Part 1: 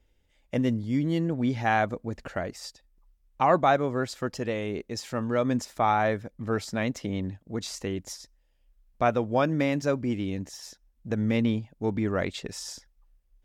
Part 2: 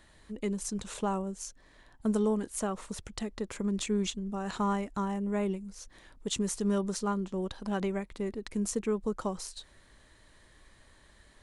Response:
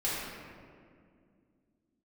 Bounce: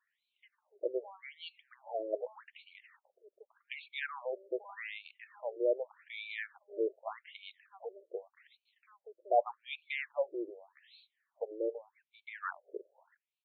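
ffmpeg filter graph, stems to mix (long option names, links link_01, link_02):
-filter_complex "[0:a]adelay=300,volume=-2dB[link_01];[1:a]volume=-17dB[link_02];[link_01][link_02]amix=inputs=2:normalize=0,afftfilt=real='re*between(b*sr/1024,440*pow(3200/440,0.5+0.5*sin(2*PI*0.84*pts/sr))/1.41,440*pow(3200/440,0.5+0.5*sin(2*PI*0.84*pts/sr))*1.41)':imag='im*between(b*sr/1024,440*pow(3200/440,0.5+0.5*sin(2*PI*0.84*pts/sr))/1.41,440*pow(3200/440,0.5+0.5*sin(2*PI*0.84*pts/sr))*1.41)':win_size=1024:overlap=0.75"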